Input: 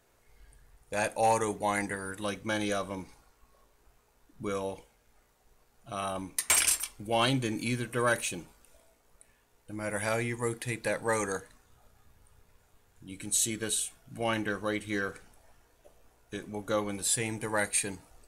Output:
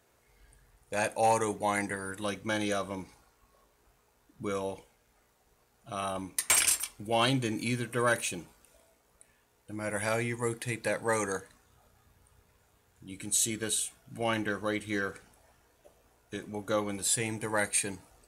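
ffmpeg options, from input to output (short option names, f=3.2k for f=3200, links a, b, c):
-af "highpass=52"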